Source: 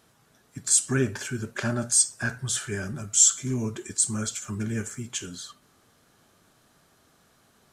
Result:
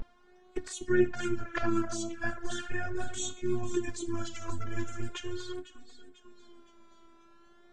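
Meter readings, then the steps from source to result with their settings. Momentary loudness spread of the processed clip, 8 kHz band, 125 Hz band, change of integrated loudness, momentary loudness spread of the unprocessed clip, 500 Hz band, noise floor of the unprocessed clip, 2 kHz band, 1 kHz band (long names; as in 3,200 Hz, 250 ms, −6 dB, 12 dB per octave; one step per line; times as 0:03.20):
11 LU, −20.5 dB, −9.5 dB, −10.0 dB, 15 LU, +1.5 dB, −63 dBFS, −3.5 dB, +1.5 dB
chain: noise gate −52 dBFS, range −42 dB
high-shelf EQ 3,400 Hz +3 dB
upward compression, threshold −22 dBFS
phases set to zero 351 Hz
on a send: delay that swaps between a low-pass and a high-pass 257 ms, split 1,800 Hz, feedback 66%, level −9 dB
on the sum: pitch vibrato 0.39 Hz 76 cents
flanger swept by the level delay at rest 5.5 ms, full sweep at −19 dBFS
head-to-tape spacing loss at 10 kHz 31 dB
level +5 dB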